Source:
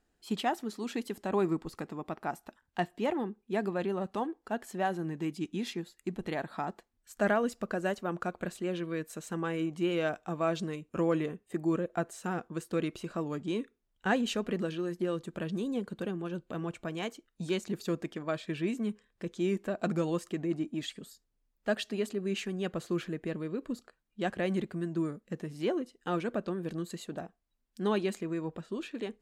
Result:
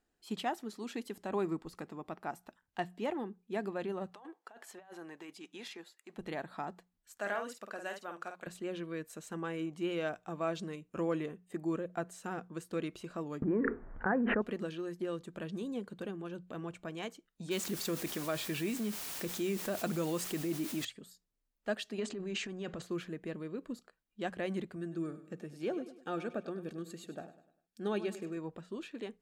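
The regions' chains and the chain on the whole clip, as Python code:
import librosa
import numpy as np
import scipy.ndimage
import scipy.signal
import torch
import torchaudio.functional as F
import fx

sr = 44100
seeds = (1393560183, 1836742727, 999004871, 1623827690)

y = fx.chain(x, sr, fx.highpass(hz=710.0, slope=12),
    fx.tilt_eq(slope=-1.5),
    fx.over_compress(threshold_db=-45.0, ratio=-1.0), at=(4.12, 6.18))
y = fx.chain(y, sr, fx.highpass(hz=910.0, slope=6),
    fx.doubler(ms=50.0, db=-6), at=(7.17, 8.47))
y = fx.chain(y, sr, fx.steep_lowpass(hz=1800.0, slope=48),
    fx.env_flatten(amount_pct=100), at=(13.42, 14.42))
y = fx.chain(y, sr, fx.high_shelf(hz=4600.0, db=7.0),
    fx.quant_dither(seeds[0], bits=8, dither='triangular'),
    fx.env_flatten(amount_pct=50), at=(17.51, 20.85))
y = fx.chain(y, sr, fx.steep_lowpass(hz=8100.0, slope=36),
    fx.transient(attack_db=-7, sustain_db=8), at=(21.98, 22.82))
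y = fx.chain(y, sr, fx.notch_comb(f0_hz=1000.0),
    fx.echo_feedback(ms=100, feedback_pct=41, wet_db=-13.5), at=(24.76, 28.37))
y = fx.low_shelf(y, sr, hz=150.0, db=-3.5)
y = fx.hum_notches(y, sr, base_hz=60, count=3)
y = y * librosa.db_to_amplitude(-4.5)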